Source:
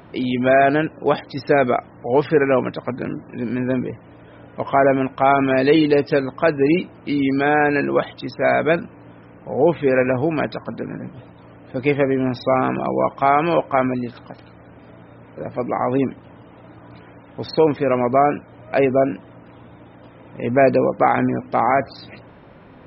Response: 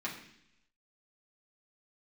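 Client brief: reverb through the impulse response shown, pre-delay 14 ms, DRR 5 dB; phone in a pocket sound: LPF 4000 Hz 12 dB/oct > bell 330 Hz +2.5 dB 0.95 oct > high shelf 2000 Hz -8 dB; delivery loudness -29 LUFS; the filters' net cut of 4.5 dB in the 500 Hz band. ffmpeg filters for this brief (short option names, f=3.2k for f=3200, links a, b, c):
-filter_complex "[0:a]equalizer=f=500:t=o:g=-6.5,asplit=2[a][b];[1:a]atrim=start_sample=2205,adelay=14[c];[b][c]afir=irnorm=-1:irlink=0,volume=-8.5dB[d];[a][d]amix=inputs=2:normalize=0,lowpass=4k,equalizer=f=330:t=o:w=0.95:g=2.5,highshelf=f=2k:g=-8,volume=-8dB"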